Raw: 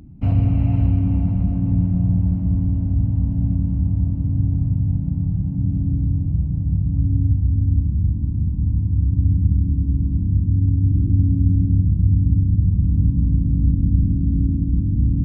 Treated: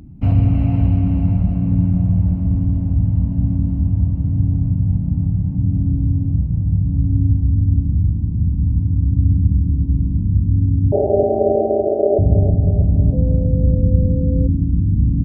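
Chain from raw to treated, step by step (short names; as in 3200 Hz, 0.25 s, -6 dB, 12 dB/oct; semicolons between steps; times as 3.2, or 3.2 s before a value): 10.92–12.19 ring modulator 500 Hz; feedback echo 0.32 s, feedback 53%, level -10 dB; 13.12–14.46 whine 510 Hz -30 dBFS; gain +3 dB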